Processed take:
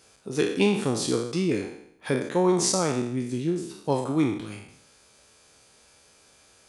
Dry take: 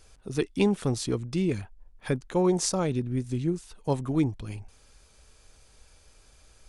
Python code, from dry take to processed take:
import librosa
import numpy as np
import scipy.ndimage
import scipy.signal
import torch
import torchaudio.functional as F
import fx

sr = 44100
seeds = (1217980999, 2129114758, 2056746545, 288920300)

y = fx.spec_trails(x, sr, decay_s=0.71)
y = scipy.signal.sosfilt(scipy.signal.butter(2, 160.0, 'highpass', fs=sr, output='sos'), y)
y = F.gain(torch.from_numpy(y), 1.5).numpy()